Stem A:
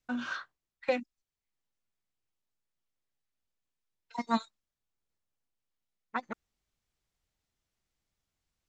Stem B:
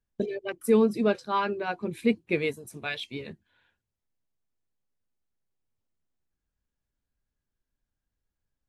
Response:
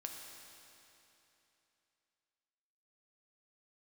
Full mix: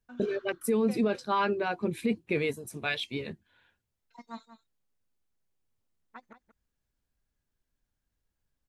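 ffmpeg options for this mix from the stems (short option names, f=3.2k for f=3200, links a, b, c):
-filter_complex "[0:a]volume=-14dB,asplit=2[a][b];[b]volume=-12.5dB[c];[1:a]volume=2dB[d];[c]aecho=0:1:183:1[e];[a][d][e]amix=inputs=3:normalize=0,alimiter=limit=-18.5dB:level=0:latency=1:release=19"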